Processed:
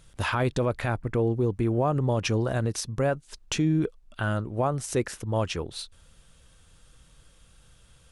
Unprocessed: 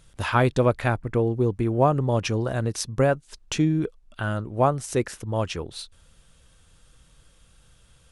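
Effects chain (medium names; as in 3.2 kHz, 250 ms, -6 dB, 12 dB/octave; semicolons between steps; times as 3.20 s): peak limiter -16 dBFS, peak gain reduction 8.5 dB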